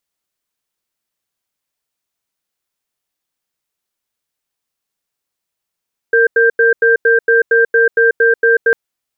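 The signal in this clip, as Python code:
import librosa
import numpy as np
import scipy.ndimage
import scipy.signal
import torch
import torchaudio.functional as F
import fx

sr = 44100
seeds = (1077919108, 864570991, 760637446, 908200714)

y = fx.cadence(sr, length_s=2.6, low_hz=461.0, high_hz=1580.0, on_s=0.14, off_s=0.09, level_db=-10.0)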